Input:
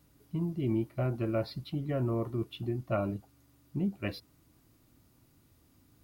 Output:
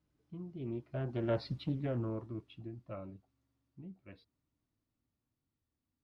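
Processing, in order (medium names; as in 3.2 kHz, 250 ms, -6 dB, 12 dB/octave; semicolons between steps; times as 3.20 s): Doppler pass-by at 1.53 s, 15 m/s, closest 3.8 m; distance through air 88 m; loudspeaker Doppler distortion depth 0.33 ms; trim +1 dB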